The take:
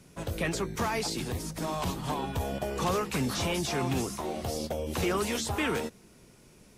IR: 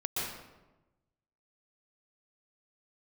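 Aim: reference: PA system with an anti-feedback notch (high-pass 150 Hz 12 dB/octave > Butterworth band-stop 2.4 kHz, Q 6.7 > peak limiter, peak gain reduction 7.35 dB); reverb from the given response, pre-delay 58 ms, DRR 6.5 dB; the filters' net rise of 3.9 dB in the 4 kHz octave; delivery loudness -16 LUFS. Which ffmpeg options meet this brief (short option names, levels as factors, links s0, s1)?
-filter_complex "[0:a]equalizer=f=4000:t=o:g=5,asplit=2[s0][s1];[1:a]atrim=start_sample=2205,adelay=58[s2];[s1][s2]afir=irnorm=-1:irlink=0,volume=0.251[s3];[s0][s3]amix=inputs=2:normalize=0,highpass=150,asuperstop=centerf=2400:order=8:qfactor=6.7,volume=7.08,alimiter=limit=0.473:level=0:latency=1"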